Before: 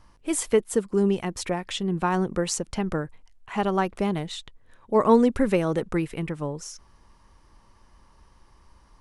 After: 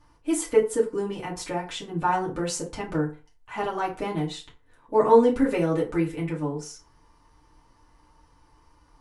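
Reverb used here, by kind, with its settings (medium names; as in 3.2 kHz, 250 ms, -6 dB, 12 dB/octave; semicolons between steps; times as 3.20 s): FDN reverb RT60 0.34 s, low-frequency decay 0.85×, high-frequency decay 0.65×, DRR -5.5 dB; trim -7.5 dB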